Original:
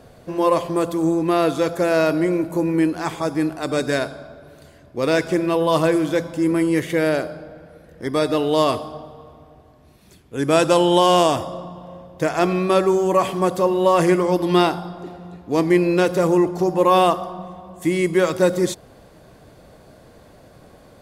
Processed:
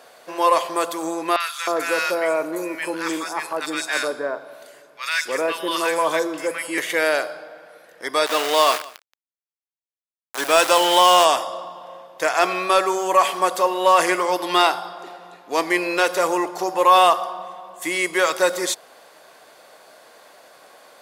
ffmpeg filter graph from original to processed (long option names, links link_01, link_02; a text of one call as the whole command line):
ffmpeg -i in.wav -filter_complex "[0:a]asettb=1/sr,asplit=3[link_01][link_02][link_03];[link_01]atrim=end=1.364[link_04];[link_02]atrim=start=1.36:end=6.78,asetpts=PTS-STARTPTS,afade=type=in:duration=0.004:curve=qsin,afade=type=out:start_time=5.416:duration=0.004:curve=qsin,equalizer=frequency=720:width_type=o:width=0.31:gain=-6.5,acrossover=split=1200|4300[link_05][link_06][link_07];[link_07]adelay=40[link_08];[link_05]adelay=310[link_09];[link_09][link_06][link_08]amix=inputs=3:normalize=0,atrim=end_sample=239022[link_10];[link_03]atrim=start=6.776[link_11];[link_04][link_10]acrossfade=duration=0.004:curve1=hsin:curve2=qsin[link_12];[link_12][link_11]acrossfade=duration=0.004:curve1=qsin:curve2=hsin,asettb=1/sr,asplit=3[link_13][link_14][link_15];[link_13]atrim=end=8.264[link_16];[link_14]atrim=start=8.26:end=11.25,asetpts=PTS-STARTPTS,afade=type=in:duration=0.004:curve=qsin,afade=type=out:start_time=2.986:duration=0.004:curve=qsin,aeval=exprs='val(0)*gte(abs(val(0)),0.0631)':channel_layout=same,aecho=1:1:176:0.0841,atrim=end_sample=131859[link_17];[link_15]atrim=start=11.246[link_18];[link_16][link_17]acrossfade=duration=0.004:curve1=hsin:curve2=qsin[link_19];[link_19][link_18]acrossfade=duration=0.004:curve1=qsin:curve2=hsin,highpass=800,acontrast=61" out.wav